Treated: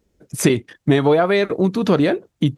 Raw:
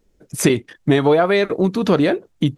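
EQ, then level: HPF 58 Hz; low shelf 130 Hz +4.5 dB; -1.0 dB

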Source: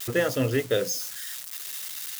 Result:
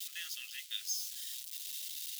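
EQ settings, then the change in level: ladder high-pass 2600 Hz, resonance 35%; 0.0 dB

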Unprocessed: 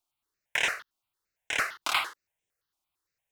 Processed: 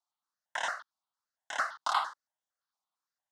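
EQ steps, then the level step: dynamic EQ 810 Hz, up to +5 dB, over -43 dBFS, Q 1.3; BPF 310–5400 Hz; fixed phaser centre 1000 Hz, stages 4; 0.0 dB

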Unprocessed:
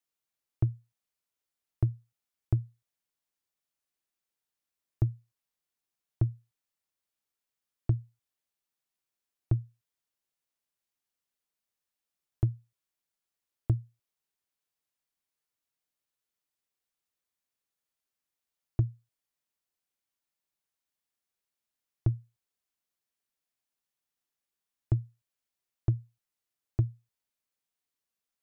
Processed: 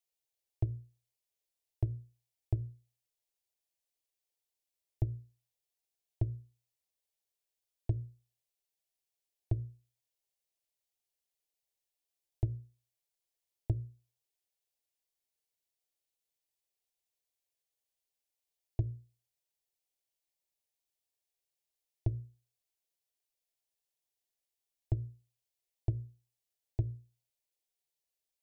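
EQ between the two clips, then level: notches 60/120/180/240/300/360/420/480/540/600 Hz; fixed phaser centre 530 Hz, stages 4; 0.0 dB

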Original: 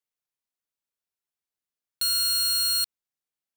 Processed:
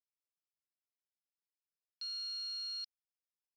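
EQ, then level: band-pass 5200 Hz, Q 19; air absorption 340 m; +14.5 dB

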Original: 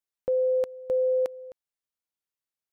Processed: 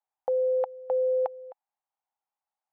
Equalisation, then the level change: resonant high-pass 810 Hz, resonance Q 7.4; LPF 1100 Hz 6 dB/oct; air absorption 270 m; +4.0 dB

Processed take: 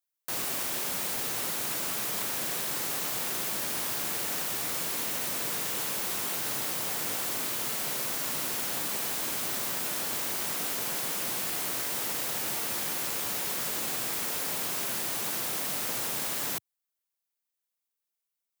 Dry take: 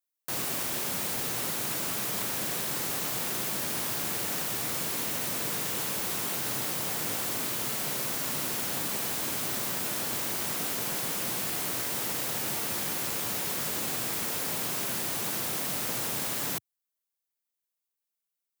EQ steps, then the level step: low shelf 260 Hz -7 dB; 0.0 dB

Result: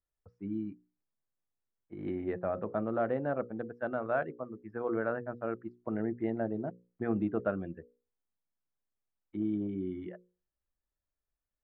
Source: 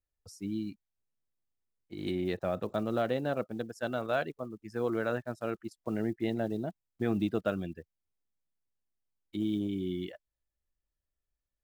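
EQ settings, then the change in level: LPF 1800 Hz 24 dB/oct; low shelf 120 Hz -4 dB; notches 60/120/180/240/300/360/420/480/540 Hz; 0.0 dB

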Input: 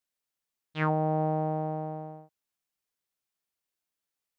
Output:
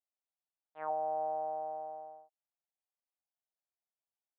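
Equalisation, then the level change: ladder band-pass 760 Hz, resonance 55%; air absorption 190 m; bell 830 Hz +4 dB 0.38 oct; 0.0 dB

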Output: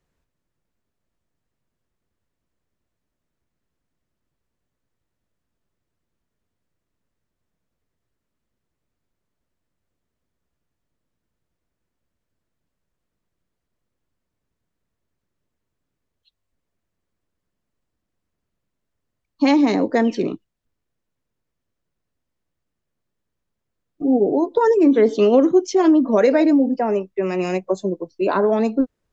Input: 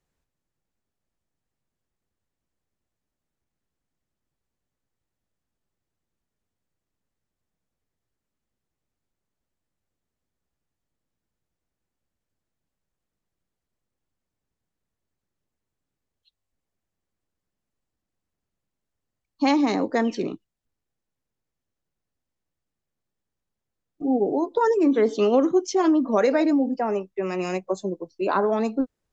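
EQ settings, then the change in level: notch 800 Hz, Q 12; dynamic EQ 1200 Hz, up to -6 dB, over -41 dBFS, Q 2.5; high shelf 4200 Hz -6.5 dB; +5.5 dB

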